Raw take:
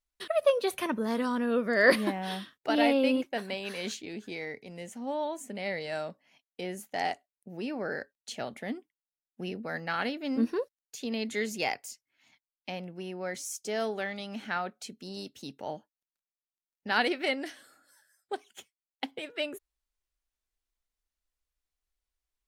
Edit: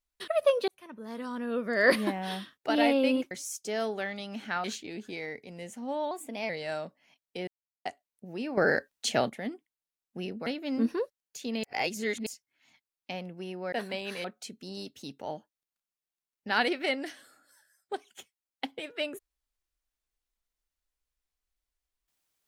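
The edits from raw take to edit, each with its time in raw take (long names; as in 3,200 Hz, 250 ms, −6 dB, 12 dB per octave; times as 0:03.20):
0:00.68–0:02.04: fade in
0:03.31–0:03.83: swap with 0:13.31–0:14.64
0:05.30–0:05.73: play speed 112%
0:06.71–0:07.09: silence
0:07.81–0:08.53: clip gain +10 dB
0:09.70–0:10.05: remove
0:11.22–0:11.85: reverse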